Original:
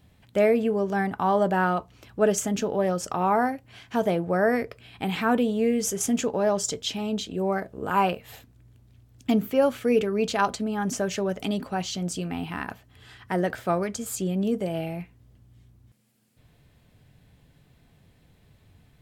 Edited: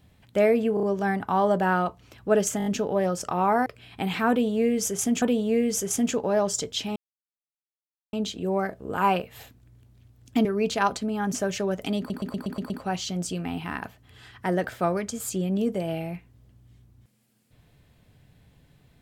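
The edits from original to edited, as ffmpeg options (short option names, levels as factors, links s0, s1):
-filter_complex "[0:a]asplit=18[s0][s1][s2][s3][s4][s5][s6][s7][s8][s9][s10][s11][s12][s13][s14][s15][s16][s17];[s0]atrim=end=0.772[s18];[s1]atrim=start=0.738:end=0.772[s19];[s2]atrim=start=0.738:end=0.772[s20];[s3]atrim=start=0.738:end=2.512[s21];[s4]atrim=start=2.488:end=2.512[s22];[s5]atrim=start=2.488:end=2.512[s23];[s6]atrim=start=2.488:end=2.512[s24];[s7]atrim=start=2.488:end=3.492[s25];[s8]atrim=start=4.678:end=6.242[s26];[s9]atrim=start=5.318:end=7.06,asetpts=PTS-STARTPTS,afade=t=out:st=1.738:d=0.004:c=hsin,apad=pad_dur=1.17[s27];[s10]atrim=start=7.06:end=9.382,asetpts=PTS-STARTPTS,afade=t=in:d=0.004:c=hsin[s28];[s11]atrim=start=10.028:end=11.682[s29];[s12]atrim=start=11.558:end=11.682[s30];[s13]atrim=start=11.558:end=11.682[s31];[s14]atrim=start=11.558:end=11.682[s32];[s15]atrim=start=11.558:end=11.682[s33];[s16]atrim=start=11.558:end=11.682[s34];[s17]atrim=start=11.558[s35];[s18][s19]acrossfade=d=0.004:c1=hsin:c2=hsin[s36];[s36][s20]acrossfade=d=0.004:c1=hsin:c2=hsin[s37];[s37][s21]acrossfade=d=0.004:c1=hsin:c2=hsin[s38];[s38][s22]acrossfade=d=0.004:c1=hsin:c2=hsin[s39];[s39][s23]acrossfade=d=0.004:c1=hsin:c2=hsin[s40];[s40][s24]acrossfade=d=0.004:c1=hsin:c2=hsin[s41];[s41][s25]acrossfade=d=0.004:c1=hsin:c2=hsin[s42];[s42][s26]acrossfade=d=0.004:c1=hsin:c2=hsin[s43];[s27][s28]concat=n=2:v=0:a=1[s44];[s43][s44]acrossfade=d=0.004:c1=hsin:c2=hsin[s45];[s45][s29]acrossfade=d=0.004:c1=hsin:c2=hsin[s46];[s46][s30]acrossfade=d=0.004:c1=hsin:c2=hsin[s47];[s47][s31]acrossfade=d=0.004:c1=hsin:c2=hsin[s48];[s48][s32]acrossfade=d=0.004:c1=hsin:c2=hsin[s49];[s49][s33]acrossfade=d=0.004:c1=hsin:c2=hsin[s50];[s50][s34]acrossfade=d=0.004:c1=hsin:c2=hsin[s51];[s51][s35]acrossfade=d=0.004:c1=hsin:c2=hsin"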